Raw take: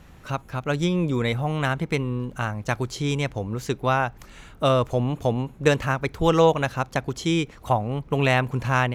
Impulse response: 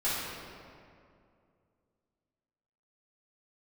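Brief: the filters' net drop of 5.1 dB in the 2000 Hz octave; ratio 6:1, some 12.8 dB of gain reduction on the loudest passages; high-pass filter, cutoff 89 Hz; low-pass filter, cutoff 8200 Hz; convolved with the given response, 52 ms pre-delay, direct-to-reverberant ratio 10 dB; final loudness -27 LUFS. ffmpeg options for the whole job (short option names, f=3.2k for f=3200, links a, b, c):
-filter_complex "[0:a]highpass=89,lowpass=8.2k,equalizer=f=2k:t=o:g=-7,acompressor=threshold=-27dB:ratio=6,asplit=2[a][b];[1:a]atrim=start_sample=2205,adelay=52[c];[b][c]afir=irnorm=-1:irlink=0,volume=-19.5dB[d];[a][d]amix=inputs=2:normalize=0,volume=5dB"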